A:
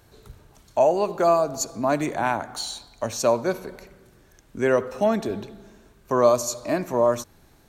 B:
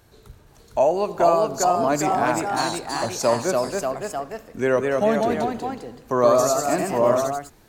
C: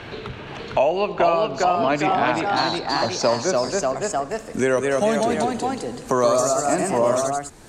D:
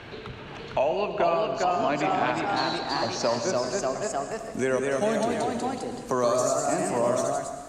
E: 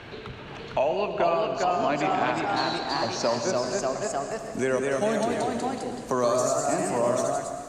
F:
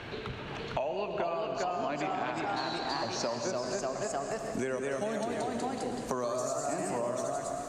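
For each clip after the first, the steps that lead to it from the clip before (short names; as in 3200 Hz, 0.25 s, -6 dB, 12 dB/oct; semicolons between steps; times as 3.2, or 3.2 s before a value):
echoes that change speed 0.47 s, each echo +1 st, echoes 3
low-pass sweep 2800 Hz -> 8600 Hz, 1.87–4.48; three-band squash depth 70%
reverb RT60 1.4 s, pre-delay 0.104 s, DRR 7.5 dB; gain -6 dB
warbling echo 0.223 s, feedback 64%, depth 63 cents, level -16.5 dB
compressor, threshold -30 dBFS, peak gain reduction 10.5 dB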